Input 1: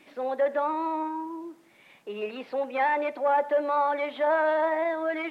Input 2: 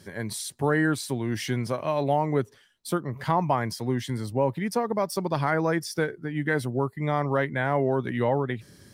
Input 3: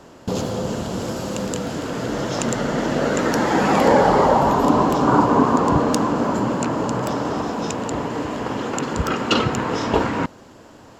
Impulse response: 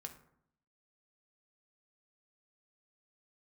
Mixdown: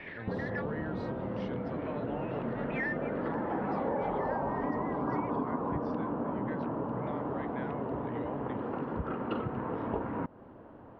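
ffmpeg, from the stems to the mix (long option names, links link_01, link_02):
-filter_complex "[0:a]highpass=frequency=1800:width_type=q:width=7.1,asplit=2[link_01][link_02];[link_02]highpass=frequency=720:poles=1,volume=12dB,asoftclip=type=tanh:threshold=-25.5dB[link_03];[link_01][link_03]amix=inputs=2:normalize=0,lowpass=frequency=2400:poles=1,volume=-6dB,volume=-2dB[link_04];[1:a]volume=-12.5dB,asplit=2[link_05][link_06];[2:a]lowpass=1200,volume=-5.5dB[link_07];[link_06]apad=whole_len=234073[link_08];[link_04][link_08]sidechaincompress=threshold=-51dB:ratio=4:attack=33:release=201[link_09];[link_09][link_05][link_07]amix=inputs=3:normalize=0,lowpass=frequency=3800:width=0.5412,lowpass=frequency=3800:width=1.3066,acompressor=threshold=-33dB:ratio=3"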